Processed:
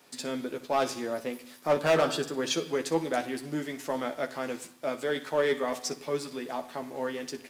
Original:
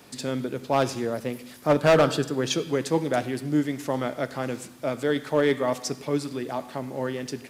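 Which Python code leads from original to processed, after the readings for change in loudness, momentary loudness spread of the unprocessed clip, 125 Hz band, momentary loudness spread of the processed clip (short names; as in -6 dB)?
-4.5 dB, 11 LU, -11.5 dB, 10 LU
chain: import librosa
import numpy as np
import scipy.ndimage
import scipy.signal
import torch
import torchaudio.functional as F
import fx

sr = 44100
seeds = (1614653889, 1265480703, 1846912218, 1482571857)

y = fx.highpass(x, sr, hz=380.0, slope=6)
y = fx.leveller(y, sr, passes=1)
y = fx.room_early_taps(y, sr, ms=(12, 61), db=(-6.0, -16.0))
y = F.gain(torch.from_numpy(y), -6.5).numpy()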